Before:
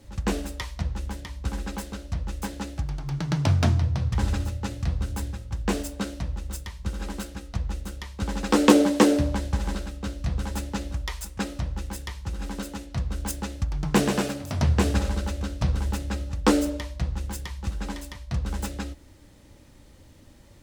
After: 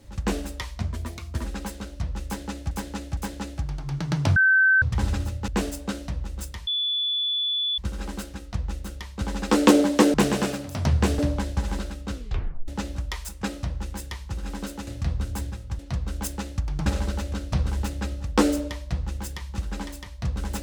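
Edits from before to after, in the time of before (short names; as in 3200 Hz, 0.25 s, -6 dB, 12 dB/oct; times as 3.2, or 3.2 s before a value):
0.81–1.56 speed 119%
2.37–2.83 loop, 3 plays
3.56–4.02 bleep 1540 Hz -14.5 dBFS
4.68–5.6 move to 12.83
6.79 add tone 3450 Hz -22.5 dBFS 1.11 s
10.09 tape stop 0.55 s
13.9–14.95 move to 9.15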